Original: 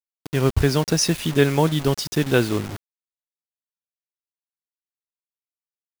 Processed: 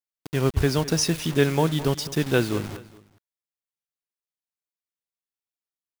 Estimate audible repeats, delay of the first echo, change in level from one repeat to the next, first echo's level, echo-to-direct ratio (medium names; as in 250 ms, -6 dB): 2, 209 ms, -8.0 dB, -17.0 dB, -16.5 dB